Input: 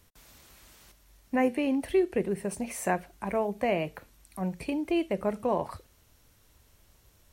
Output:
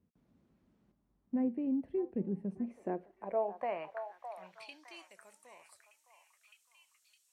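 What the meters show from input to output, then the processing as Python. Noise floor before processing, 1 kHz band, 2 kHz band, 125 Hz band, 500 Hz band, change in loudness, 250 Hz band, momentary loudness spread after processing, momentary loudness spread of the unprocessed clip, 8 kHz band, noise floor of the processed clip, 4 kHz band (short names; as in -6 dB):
-63 dBFS, -9.0 dB, -15.5 dB, -9.5 dB, -10.0 dB, -7.5 dB, -7.0 dB, 17 LU, 9 LU, under -20 dB, -76 dBFS, -12.5 dB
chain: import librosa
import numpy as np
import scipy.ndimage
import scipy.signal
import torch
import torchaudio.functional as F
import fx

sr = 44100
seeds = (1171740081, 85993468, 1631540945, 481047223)

y = fx.filter_sweep_bandpass(x, sr, from_hz=210.0, to_hz=7900.0, start_s=2.59, end_s=5.18, q=2.1)
y = fx.echo_stepped(y, sr, ms=611, hz=950.0, octaves=0.7, feedback_pct=70, wet_db=-6.0)
y = y * 10.0 ** (-1.5 / 20.0)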